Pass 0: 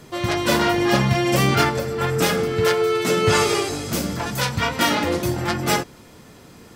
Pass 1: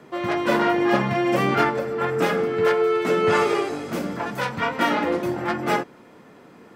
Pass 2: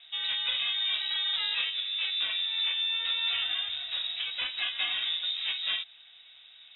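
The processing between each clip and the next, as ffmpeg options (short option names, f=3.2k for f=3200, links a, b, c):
-filter_complex "[0:a]acrossover=split=170 2500:gain=0.112 1 0.178[a][b][c];[a][b][c]amix=inputs=3:normalize=0"
-af "acompressor=threshold=-22dB:ratio=4,lowpass=f=3.4k:t=q:w=0.5098,lowpass=f=3.4k:t=q:w=0.6013,lowpass=f=3.4k:t=q:w=0.9,lowpass=f=3.4k:t=q:w=2.563,afreqshift=-4000,lowshelf=f=67:g=8.5,volume=-5.5dB"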